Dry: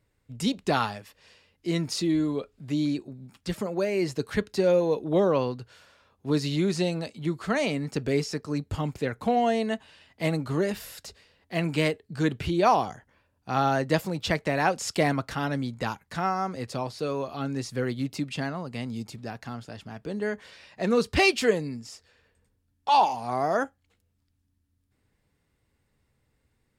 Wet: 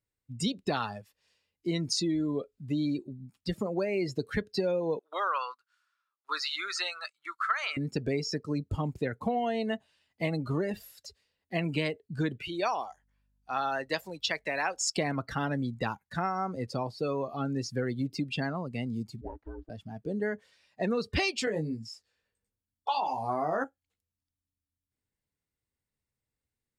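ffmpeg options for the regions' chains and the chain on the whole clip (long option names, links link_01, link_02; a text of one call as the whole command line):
ffmpeg -i in.wav -filter_complex "[0:a]asettb=1/sr,asplit=3[link_01][link_02][link_03];[link_01]atrim=end=4.994[link_04];[link_02]atrim=start=4.99:end=7.77,asetpts=PTS-STARTPTS,afade=type=in:duration=0.004:curve=qsin,afade=type=out:start_time=2.776:duration=0.004:curve=qsin,highpass=frequency=1300:width_type=q:width=4.9,agate=range=-10dB:threshold=-46dB:ratio=16:release=100:detection=peak[link_05];[link_03]atrim=start=7.766[link_06];[link_04][link_05]acrossfade=duration=0.004:curve1=hsin:curve2=qsin[link_07];[link_07][link_06]acrossfade=duration=0.004:curve1=qsin:curve2=hsin,asettb=1/sr,asplit=3[link_08][link_09][link_10];[link_08]atrim=end=12.384[link_11];[link_09]atrim=start=12.38:end=14.91,asetpts=PTS-STARTPTS,afade=type=in:duration=0.004:curve=qsin,afade=type=out:start_time=2.526:duration=0.004:curve=qsin,highpass=frequency=940:poles=1,aeval=exprs='val(0)+0.00158*(sin(2*PI*50*n/s)+sin(2*PI*2*50*n/s)/2+sin(2*PI*3*50*n/s)/3+sin(2*PI*4*50*n/s)/4+sin(2*PI*5*50*n/s)/5)':channel_layout=same[link_12];[link_10]atrim=start=14.906[link_13];[link_11][link_12]acrossfade=duration=0.004:curve1=hsin:curve2=qsin[link_14];[link_14][link_13]acrossfade=duration=0.004:curve1=qsin:curve2=hsin,asettb=1/sr,asplit=3[link_15][link_16][link_17];[link_15]atrim=end=19.214[link_18];[link_16]atrim=start=19.21:end=19.7,asetpts=PTS-STARTPTS,afade=type=in:duration=0.004:curve=qsin,afade=type=out:start_time=0.486:duration=0.004:curve=qsin,lowpass=1200,aeval=exprs='val(0)*sin(2*PI*180*n/s)':channel_layout=same[link_19];[link_17]atrim=start=19.696[link_20];[link_18][link_19]acrossfade=duration=0.004:curve1=hsin:curve2=qsin[link_21];[link_21][link_20]acrossfade=duration=0.004:curve1=qsin:curve2=hsin,asettb=1/sr,asplit=3[link_22][link_23][link_24];[link_22]atrim=end=21.454[link_25];[link_23]atrim=start=21.45:end=23.64,asetpts=PTS-STARTPTS,afade=type=in:duration=0.004:curve=qsin,afade=type=out:start_time=2.186:duration=0.004:curve=qsin,acompressor=threshold=-22dB:ratio=6:attack=3.2:release=140:knee=1:detection=peak,asplit=2[link_26][link_27];[link_27]adelay=19,volume=-4dB[link_28];[link_26][link_28]amix=inputs=2:normalize=0,atrim=end_sample=96579[link_29];[link_24]atrim=start=23.636[link_30];[link_25][link_29]acrossfade=duration=0.004:curve1=hsin:curve2=qsin[link_31];[link_31][link_30]acrossfade=duration=0.004:curve1=qsin:curve2=hsin,afftdn=noise_reduction=19:noise_floor=-36,highshelf=frequency=4000:gain=9,acompressor=threshold=-26dB:ratio=6" out.wav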